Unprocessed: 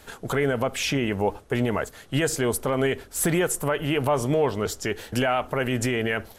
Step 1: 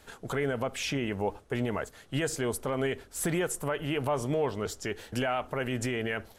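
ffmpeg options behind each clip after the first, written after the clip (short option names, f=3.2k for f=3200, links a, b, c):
-af "equalizer=f=13k:w=1.7:g=-4.5,volume=-6.5dB"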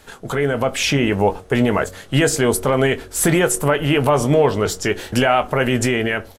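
-filter_complex "[0:a]dynaudnorm=f=240:g=5:m=5.5dB,asplit=2[a][b];[b]adelay=21,volume=-12dB[c];[a][c]amix=inputs=2:normalize=0,bandreject=f=92.52:t=h:w=4,bandreject=f=185.04:t=h:w=4,bandreject=f=277.56:t=h:w=4,bandreject=f=370.08:t=h:w=4,bandreject=f=462.6:t=h:w=4,bandreject=f=555.12:t=h:w=4,bandreject=f=647.64:t=h:w=4,bandreject=f=740.16:t=h:w=4,volume=8.5dB"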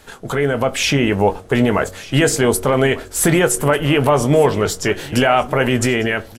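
-af "aecho=1:1:1197:0.119,volume=1.5dB"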